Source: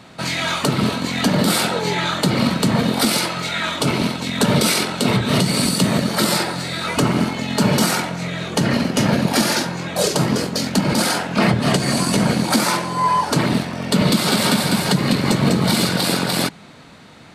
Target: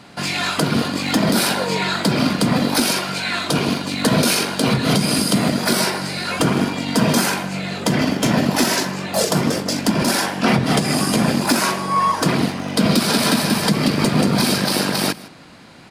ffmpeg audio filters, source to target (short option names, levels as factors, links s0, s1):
-filter_complex "[0:a]asetrate=48069,aresample=44100,asplit=2[s0][s1];[s1]aecho=0:1:157:0.1[s2];[s0][s2]amix=inputs=2:normalize=0"